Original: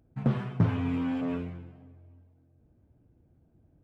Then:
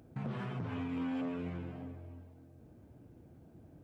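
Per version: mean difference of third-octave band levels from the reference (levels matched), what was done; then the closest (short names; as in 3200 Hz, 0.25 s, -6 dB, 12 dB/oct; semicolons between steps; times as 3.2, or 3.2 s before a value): 6.5 dB: compressor 3:1, threshold -44 dBFS, peak gain reduction 18.5 dB; limiter -39 dBFS, peak gain reduction 10.5 dB; HPF 160 Hz 6 dB/oct; gain +10.5 dB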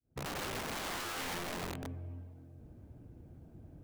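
18.0 dB: opening faded in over 1.09 s; compressor 16:1, threshold -39 dBFS, peak gain reduction 17 dB; wrapped overs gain 44.5 dB; gain +10 dB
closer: first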